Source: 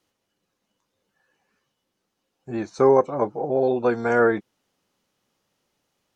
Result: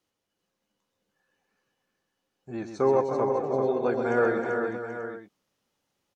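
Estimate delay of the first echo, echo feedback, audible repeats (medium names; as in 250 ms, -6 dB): 128 ms, no regular repeats, 6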